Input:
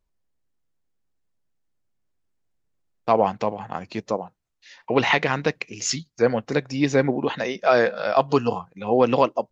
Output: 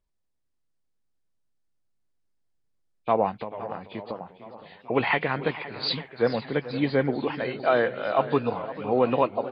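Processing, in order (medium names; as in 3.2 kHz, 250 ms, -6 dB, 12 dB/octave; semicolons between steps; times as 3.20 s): knee-point frequency compression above 2.2 kHz 1.5:1; 3.30–4.21 s: compression 6:1, threshold -27 dBFS, peak gain reduction 9.5 dB; 5.83–6.43 s: treble shelf 5.7 kHz +8.5 dB; echo from a far wall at 88 m, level -15 dB; modulated delay 442 ms, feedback 66%, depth 170 cents, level -16 dB; trim -4 dB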